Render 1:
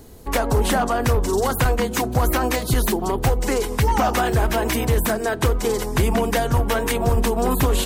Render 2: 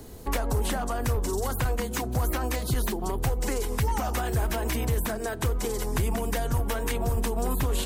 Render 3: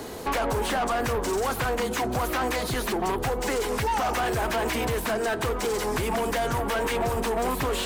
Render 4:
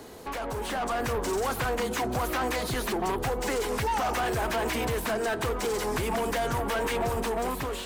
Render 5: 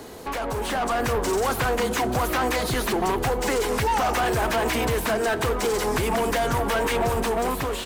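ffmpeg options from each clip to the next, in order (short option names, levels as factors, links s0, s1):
-filter_complex "[0:a]acrossover=split=93|6800[s0][s1][s2];[s0]acompressor=threshold=0.0501:ratio=4[s3];[s1]acompressor=threshold=0.0316:ratio=4[s4];[s2]acompressor=threshold=0.0126:ratio=4[s5];[s3][s4][s5]amix=inputs=3:normalize=0"
-filter_complex "[0:a]asplit=2[s0][s1];[s1]highpass=f=720:p=1,volume=22.4,asoftclip=type=tanh:threshold=0.211[s2];[s0][s2]amix=inputs=2:normalize=0,lowpass=f=2700:p=1,volume=0.501,volume=0.631"
-af "dynaudnorm=f=310:g=5:m=2.11,volume=0.376"
-af "aecho=1:1:213|426|639|852|1065:0.112|0.0651|0.0377|0.0219|0.0127,volume=1.78"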